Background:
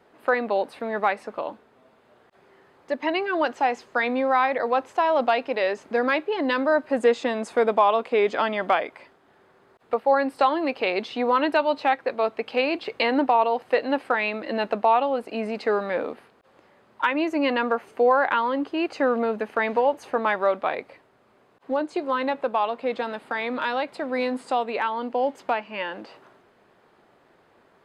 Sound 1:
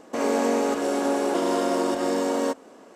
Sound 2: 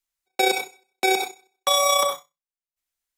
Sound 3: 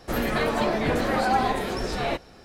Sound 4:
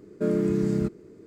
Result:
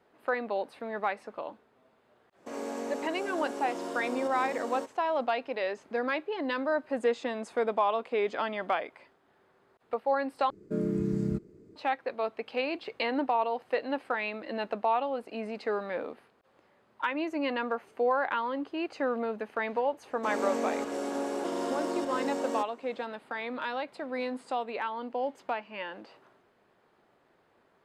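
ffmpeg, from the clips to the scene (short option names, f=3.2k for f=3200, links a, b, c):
-filter_complex "[1:a]asplit=2[a][b];[0:a]volume=-8dB[c];[4:a]lowshelf=f=320:g=7.5[d];[b]highshelf=f=11k:g=-4.5[e];[c]asplit=2[f][g];[f]atrim=end=10.504[h];[d]atrim=end=1.26,asetpts=PTS-STARTPTS,volume=-10dB[i];[g]atrim=start=11.756[j];[a]atrim=end=2.95,asetpts=PTS-STARTPTS,volume=-13.5dB,afade=t=in:d=0.1,afade=t=out:st=2.85:d=0.1,adelay=2330[k];[e]atrim=end=2.95,asetpts=PTS-STARTPTS,volume=-9dB,afade=t=in:d=0.004:c=hsin,afade=t=out:st=2.946:d=0.004:c=hsin,adelay=20100[l];[h][i]acrossfade=d=0.004:c1=hsin:c2=hsin[m];[m][j]acrossfade=d=0.004:c1=hsin:c2=hsin[n];[n][k][l]amix=inputs=3:normalize=0"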